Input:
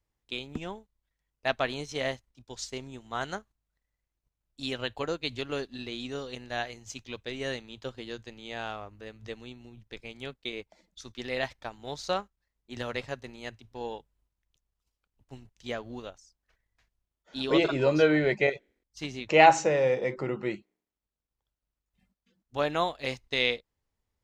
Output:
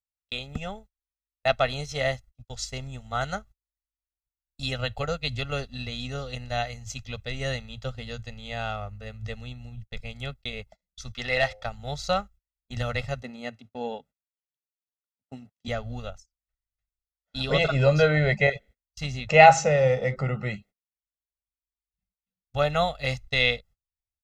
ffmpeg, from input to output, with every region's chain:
ffmpeg -i in.wav -filter_complex "[0:a]asettb=1/sr,asplit=3[link_01][link_02][link_03];[link_01]atrim=end=11.154[link_04];[link_02]atrim=start=11.15:end=11.66,asetpts=PTS-STARTPTS,afade=type=in:duration=0.004:curve=qsin,afade=type=out:start_time=0.506:duration=0.004:curve=qsin,bandreject=frequency=104.7:width_type=h:width=4,bandreject=frequency=209.4:width_type=h:width=4,bandreject=frequency=314.1:width_type=h:width=4,bandreject=frequency=418.8:width_type=h:width=4,bandreject=frequency=523.5:width_type=h:width=4,bandreject=frequency=628.2:width_type=h:width=4,bandreject=frequency=732.9:width_type=h:width=4,bandreject=frequency=837.6:width_type=h:width=4,asplit=2[link_05][link_06];[link_06]highpass=frequency=720:poles=1,volume=11dB,asoftclip=type=tanh:threshold=-13.5dB[link_07];[link_05][link_07]amix=inputs=2:normalize=0,lowpass=frequency=3900:poles=1,volume=-6dB[link_08];[link_03]atrim=start=11.656[link_09];[link_04][link_08]acrossfade=duration=0.004:curve1=hsin:curve2=qsin[link_10];[link_10][link_09]acrossfade=duration=0.004:curve1=qsin:curve2=hsin,asettb=1/sr,asplit=3[link_11][link_12][link_13];[link_11]atrim=end=13.224[link_14];[link_12]atrim=start=13.22:end=15.68,asetpts=PTS-STARTPTS,afade=type=in:duration=0.004:curve=qsin,afade=type=out:start_time=2.456:duration=0.004:curve=qsin,highpass=frequency=270:width_type=q:width=3,highshelf=frequency=4100:gain=-7[link_15];[link_13]atrim=start=15.676[link_16];[link_14][link_15]acrossfade=duration=0.004:curve1=hsin:curve2=qsin[link_17];[link_17][link_16]acrossfade=duration=0.004:curve1=qsin:curve2=hsin,agate=range=-30dB:threshold=-52dB:ratio=16:detection=peak,aecho=1:1:1.5:0.91,asubboost=boost=2.5:cutoff=200,volume=1.5dB" out.wav

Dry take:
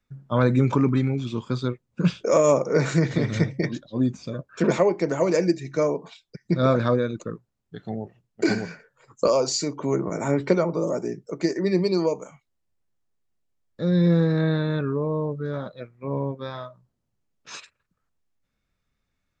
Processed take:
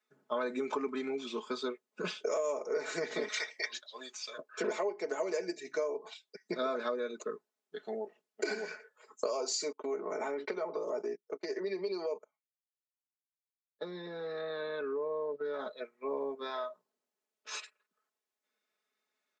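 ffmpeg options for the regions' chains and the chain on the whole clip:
ffmpeg -i in.wav -filter_complex "[0:a]asettb=1/sr,asplit=3[link_01][link_02][link_03];[link_01]atrim=end=3.284[link_04];[link_02]atrim=start=3.28:end=4.38,asetpts=PTS-STARTPTS,afade=type=in:duration=0.004:curve=qsin,afade=type=out:start_time=1.096:duration=0.004:curve=qsin,highpass=1000,equalizer=frequency=4700:width_type=o:width=2.7:gain=6.5[link_05];[link_03]atrim=start=4.376[link_06];[link_04][link_05]acrossfade=duration=0.004:curve1=hsin:curve2=qsin[link_07];[link_07][link_06]acrossfade=duration=0.004:curve1=qsin:curve2=hsin,asettb=1/sr,asplit=3[link_08][link_09][link_10];[link_08]atrim=end=9.724[link_11];[link_09]atrim=start=9.72:end=15.59,asetpts=PTS-STARTPTS,afade=type=in:duration=0.004:curve=qsin,afade=type=out:start_time=5.866:duration=0.004:curve=qsin,agate=range=-32dB:threshold=-34dB:ratio=16:release=100:detection=peak,acompressor=threshold=-26dB:ratio=4:attack=3.2:release=140:knee=1:detection=peak,lowpass=frequency=5200:width=0.5412,lowpass=frequency=5200:width=1.3066[link_12];[link_10]atrim=start=15.586[link_13];[link_11][link_12]acrossfade=duration=0.004:curve1=hsin:curve2=qsin[link_14];[link_14][link_13]acrossfade=duration=0.004:curve1=qsin:curve2=hsin,highpass=frequency=340:width=0.5412,highpass=frequency=340:width=1.3066,aecho=1:1:4.7:0.74,acompressor=threshold=-27dB:ratio=6,volume=-4dB" out.wav

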